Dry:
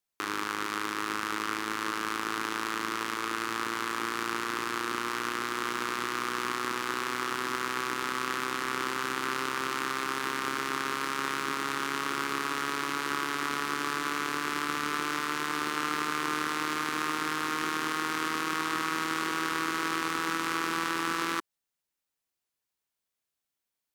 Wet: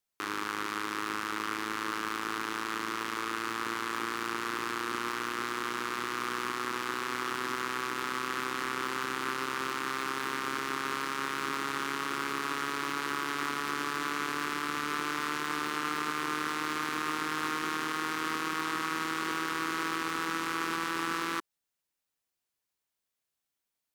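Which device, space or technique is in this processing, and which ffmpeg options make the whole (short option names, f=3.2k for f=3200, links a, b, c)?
limiter into clipper: -af "alimiter=limit=-17dB:level=0:latency=1:release=48,asoftclip=type=hard:threshold=-19.5dB"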